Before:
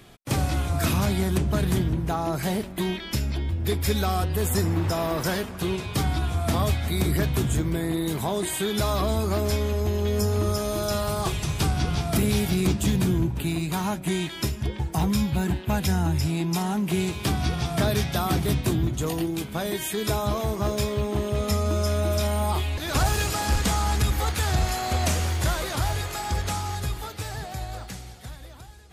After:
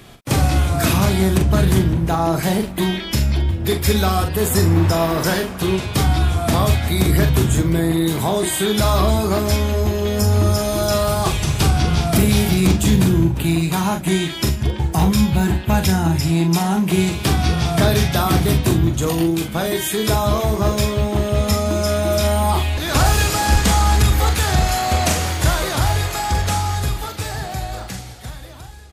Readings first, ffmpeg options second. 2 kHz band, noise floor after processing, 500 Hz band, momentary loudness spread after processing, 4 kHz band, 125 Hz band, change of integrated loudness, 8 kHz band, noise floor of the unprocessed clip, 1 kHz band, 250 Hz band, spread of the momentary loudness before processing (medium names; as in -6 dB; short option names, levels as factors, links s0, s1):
+8.0 dB, -30 dBFS, +7.5 dB, 5 LU, +8.0 dB, +8.0 dB, +8.0 dB, +8.0 dB, -38 dBFS, +8.0 dB, +8.0 dB, 5 LU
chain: -filter_complex "[0:a]asplit=2[s0][s1];[s1]adelay=42,volume=0.447[s2];[s0][s2]amix=inputs=2:normalize=0,volume=2.24"